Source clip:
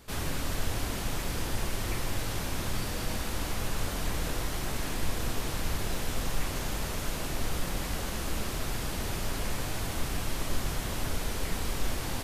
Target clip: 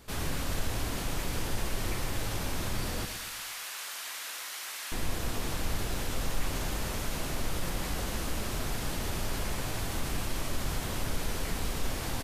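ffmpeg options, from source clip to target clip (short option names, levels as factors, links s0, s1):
-filter_complex "[0:a]asettb=1/sr,asplit=3[s0][s1][s2];[s0]atrim=end=3.054[s3];[s1]atrim=start=3.05:end=4.92,asetpts=PTS-STARTPTS,afade=t=in:d=0.004:c=qsin,afade=t=out:st=1.866:d=0.004:c=qsin,highpass=1400[s4];[s2]atrim=start=4.916[s5];[s3][s4]acrossfade=d=0.004:c1=hsin:c2=qsin[s6];[s6][s5]acrossfade=d=0.004:c1=qsin:c2=hsin,asplit=2[s7][s8];[s8]alimiter=level_in=1.06:limit=0.0631:level=0:latency=1,volume=0.944,volume=0.75[s9];[s7][s9]amix=inputs=2:normalize=0,aecho=1:1:117|234|351|468|585:0.299|0.149|0.0746|0.0373|0.0187,volume=0.562"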